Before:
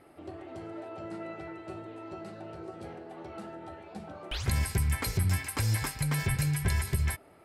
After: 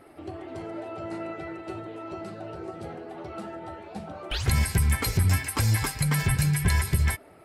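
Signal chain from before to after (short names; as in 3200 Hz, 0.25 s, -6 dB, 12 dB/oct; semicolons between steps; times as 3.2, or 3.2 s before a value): bin magnitudes rounded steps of 15 dB; gain +5.5 dB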